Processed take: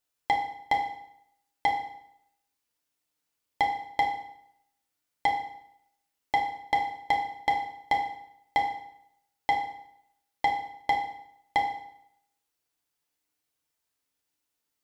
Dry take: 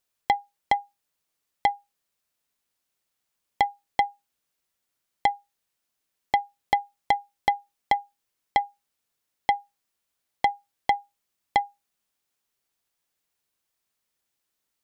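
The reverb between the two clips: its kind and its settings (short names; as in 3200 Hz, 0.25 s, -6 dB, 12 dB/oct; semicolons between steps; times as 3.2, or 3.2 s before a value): FDN reverb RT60 0.74 s, low-frequency decay 1.05×, high-frequency decay 0.9×, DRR -0.5 dB; gain -5 dB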